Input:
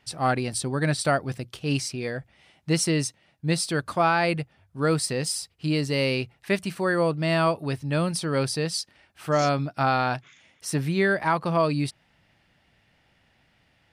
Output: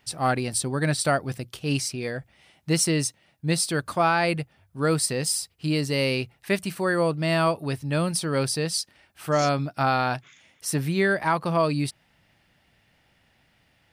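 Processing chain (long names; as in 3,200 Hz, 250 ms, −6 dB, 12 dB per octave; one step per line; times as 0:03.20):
high-shelf EQ 11,000 Hz +11.5 dB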